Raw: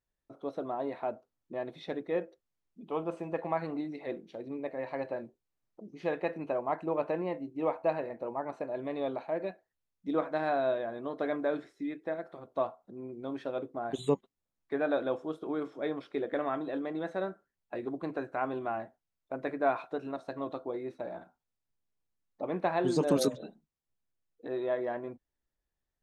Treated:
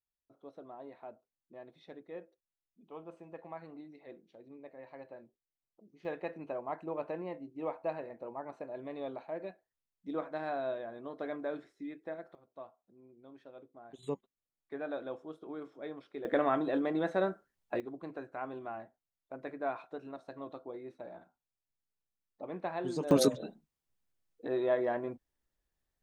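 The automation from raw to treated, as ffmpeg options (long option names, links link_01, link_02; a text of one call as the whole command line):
ffmpeg -i in.wav -af "asetnsamples=nb_out_samples=441:pad=0,asendcmd='6.05 volume volume -6.5dB;12.35 volume volume -17dB;14.03 volume volume -9dB;16.25 volume volume 3.5dB;17.8 volume volume -7.5dB;23.11 volume volume 2dB',volume=-13.5dB" out.wav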